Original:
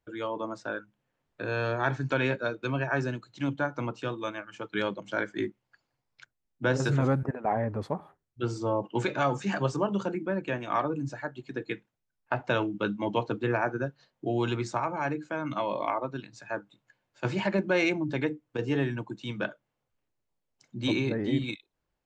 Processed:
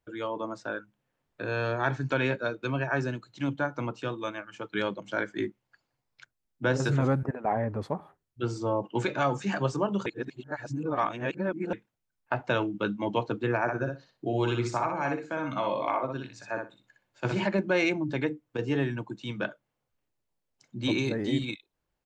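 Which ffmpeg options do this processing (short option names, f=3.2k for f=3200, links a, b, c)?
-filter_complex "[0:a]asplit=3[a][b][c];[a]afade=t=out:st=13.67:d=0.02[d];[b]aecho=1:1:61|122|183:0.596|0.107|0.0193,afade=t=in:st=13.67:d=0.02,afade=t=out:st=17.44:d=0.02[e];[c]afade=t=in:st=17.44:d=0.02[f];[d][e][f]amix=inputs=3:normalize=0,asettb=1/sr,asplit=3[g][h][i];[g]atrim=end=20.984[j];[h]atrim=start=20.98:end=21.45,asetpts=PTS-STARTPTS,afade=t=in:d=0.004:c=qsin,afade=t=out:st=0.466:d=0.004:c=qsin,bass=f=250:g=-1,treble=f=4k:g=11[k];[i]atrim=start=21.446[l];[j][k]acrossfade=d=0.004:c1=hsin:c2=qsin[m];[m][l]acrossfade=d=0.004:c1=qsin:c2=hsin,asplit=3[n][o][p];[n]atrim=end=10.062[q];[o]atrim=start=10.058:end=11.732,asetpts=PTS-STARTPTS,areverse[r];[p]atrim=start=11.728[s];[q][r]acrossfade=d=0.004:c1=hsin:c2=hsin[t];[t][s]acrossfade=d=0.004:c1=hsin:c2=hsin"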